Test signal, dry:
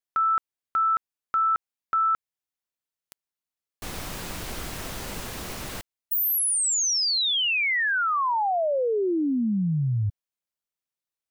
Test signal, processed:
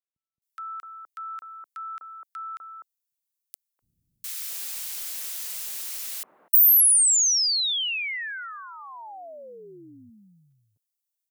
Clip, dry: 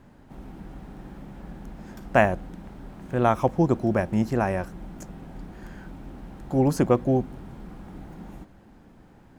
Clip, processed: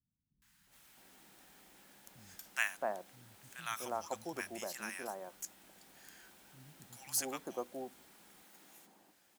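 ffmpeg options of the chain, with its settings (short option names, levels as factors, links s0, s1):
-filter_complex "[0:a]aderivative,acrossover=split=160|1100[s0][s1][s2];[s2]adelay=420[s3];[s1]adelay=670[s4];[s0][s4][s3]amix=inputs=3:normalize=0,volume=1.68"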